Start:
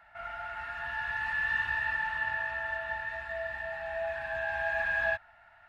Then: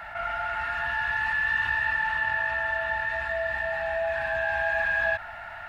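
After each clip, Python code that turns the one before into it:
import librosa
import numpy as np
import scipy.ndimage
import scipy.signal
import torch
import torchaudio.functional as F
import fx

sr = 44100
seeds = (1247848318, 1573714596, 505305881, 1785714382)

y = fx.env_flatten(x, sr, amount_pct=50)
y = y * librosa.db_to_amplitude(3.0)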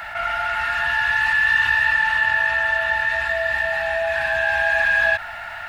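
y = fx.high_shelf(x, sr, hz=2100.0, db=11.5)
y = y * librosa.db_to_amplitude(3.5)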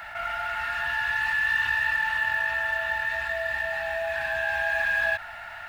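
y = fx.quant_float(x, sr, bits=4)
y = y * librosa.db_to_amplitude(-7.0)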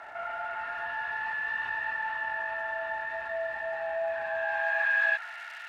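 y = fx.dmg_crackle(x, sr, seeds[0], per_s=440.0, level_db=-35.0)
y = fx.filter_sweep_bandpass(y, sr, from_hz=580.0, to_hz=2800.0, start_s=4.23, end_s=5.58, q=0.86)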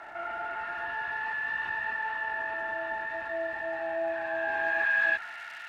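y = fx.octave_divider(x, sr, octaves=1, level_db=0.0)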